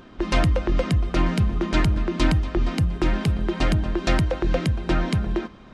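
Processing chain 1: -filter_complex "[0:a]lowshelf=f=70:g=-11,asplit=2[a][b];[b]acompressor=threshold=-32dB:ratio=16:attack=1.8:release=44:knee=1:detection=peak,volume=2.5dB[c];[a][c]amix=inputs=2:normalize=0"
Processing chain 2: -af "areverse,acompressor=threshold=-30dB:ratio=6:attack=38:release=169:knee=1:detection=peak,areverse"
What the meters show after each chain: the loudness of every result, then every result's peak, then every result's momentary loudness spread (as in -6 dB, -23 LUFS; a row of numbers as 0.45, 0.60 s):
-23.5, -32.5 LUFS; -8.0, -18.5 dBFS; 2, 1 LU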